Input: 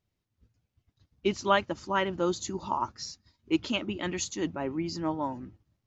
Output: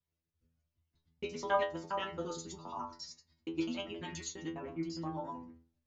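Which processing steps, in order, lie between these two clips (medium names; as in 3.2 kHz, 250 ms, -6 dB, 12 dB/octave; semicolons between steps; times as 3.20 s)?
time reversed locally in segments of 68 ms; inharmonic resonator 81 Hz, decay 0.42 s, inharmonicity 0.002; trim +1 dB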